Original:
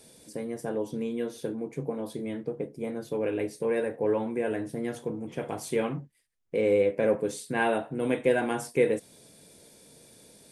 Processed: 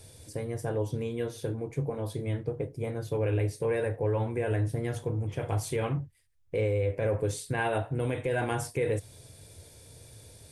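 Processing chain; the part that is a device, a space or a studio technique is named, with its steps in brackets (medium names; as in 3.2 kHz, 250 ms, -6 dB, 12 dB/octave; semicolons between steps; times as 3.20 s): car stereo with a boomy subwoofer (resonant low shelf 140 Hz +12 dB, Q 3; peak limiter -21 dBFS, peak gain reduction 9 dB); trim +1 dB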